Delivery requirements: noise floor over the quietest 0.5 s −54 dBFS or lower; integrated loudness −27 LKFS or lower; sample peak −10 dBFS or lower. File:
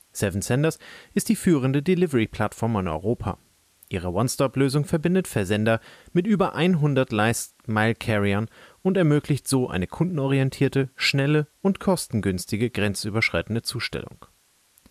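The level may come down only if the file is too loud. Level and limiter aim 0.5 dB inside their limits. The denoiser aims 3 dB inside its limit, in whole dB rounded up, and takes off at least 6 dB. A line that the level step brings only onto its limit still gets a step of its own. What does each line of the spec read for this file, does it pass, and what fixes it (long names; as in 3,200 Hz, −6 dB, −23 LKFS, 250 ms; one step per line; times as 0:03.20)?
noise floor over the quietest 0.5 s −62 dBFS: in spec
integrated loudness −23.5 LKFS: out of spec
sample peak −8.5 dBFS: out of spec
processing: level −4 dB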